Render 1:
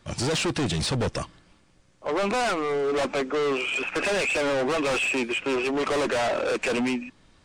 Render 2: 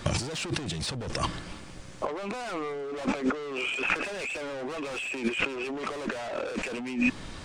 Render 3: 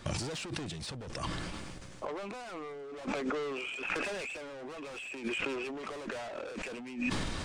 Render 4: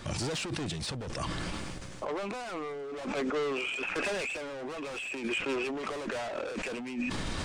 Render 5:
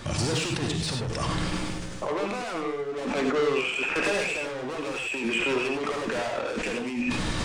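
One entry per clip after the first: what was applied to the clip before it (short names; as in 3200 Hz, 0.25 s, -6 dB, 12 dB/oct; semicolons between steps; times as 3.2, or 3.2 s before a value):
negative-ratio compressor -38 dBFS, ratio -1; gain +5.5 dB
sustainer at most 21 dB/s; gain -9 dB
limiter -30.5 dBFS, peak gain reduction 9.5 dB; gain +5 dB
non-linear reverb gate 0.12 s rising, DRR 3 dB; gain +4.5 dB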